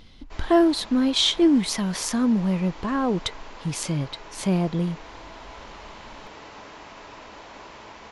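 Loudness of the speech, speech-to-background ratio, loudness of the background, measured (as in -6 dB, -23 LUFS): -23.0 LUFS, 20.0 dB, -43.0 LUFS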